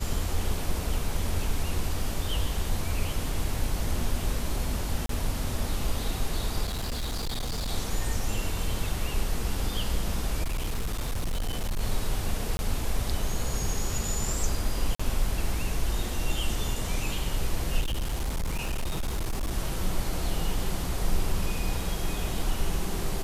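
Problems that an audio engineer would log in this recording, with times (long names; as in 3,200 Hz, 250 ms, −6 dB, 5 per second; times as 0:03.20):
0:05.06–0:05.09: drop-out 33 ms
0:06.65–0:07.71: clipping −27 dBFS
0:10.43–0:11.81: clipping −25 dBFS
0:12.57–0:12.59: drop-out 21 ms
0:14.95–0:14.99: drop-out 45 ms
0:17.80–0:19.52: clipping −25 dBFS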